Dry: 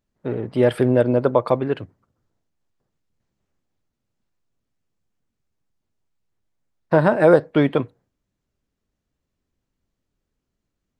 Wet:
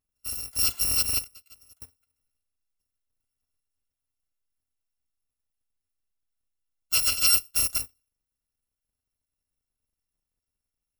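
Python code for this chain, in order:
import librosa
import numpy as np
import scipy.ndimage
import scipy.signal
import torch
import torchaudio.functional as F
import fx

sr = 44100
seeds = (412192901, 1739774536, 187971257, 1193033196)

y = fx.bit_reversed(x, sr, seeds[0], block=256)
y = fx.gate_flip(y, sr, shuts_db=-23.0, range_db=-25, at=(1.21, 1.82))
y = y * 10.0 ** (-8.0 / 20.0)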